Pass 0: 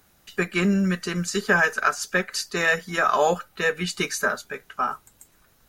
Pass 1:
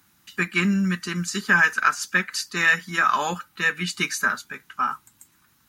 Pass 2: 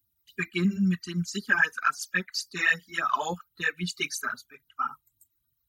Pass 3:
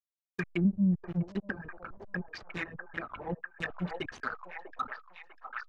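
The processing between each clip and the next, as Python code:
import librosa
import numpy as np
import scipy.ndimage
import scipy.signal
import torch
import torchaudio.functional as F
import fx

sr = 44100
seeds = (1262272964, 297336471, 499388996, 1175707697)

y1 = fx.dynamic_eq(x, sr, hz=2200.0, q=1.0, threshold_db=-31.0, ratio=4.0, max_db=4)
y1 = scipy.signal.sosfilt(scipy.signal.butter(2, 95.0, 'highpass', fs=sr, output='sos'), y1)
y1 = fx.band_shelf(y1, sr, hz=540.0, db=-12.0, octaves=1.1)
y2 = fx.bin_expand(y1, sr, power=1.5)
y2 = fx.phaser_stages(y2, sr, stages=12, low_hz=160.0, high_hz=2800.0, hz=3.7, feedback_pct=25)
y3 = fx.backlash(y2, sr, play_db=-27.0)
y3 = fx.env_lowpass_down(y3, sr, base_hz=320.0, full_db=-25.0)
y3 = fx.echo_stepped(y3, sr, ms=647, hz=680.0, octaves=0.7, feedback_pct=70, wet_db=-1.0)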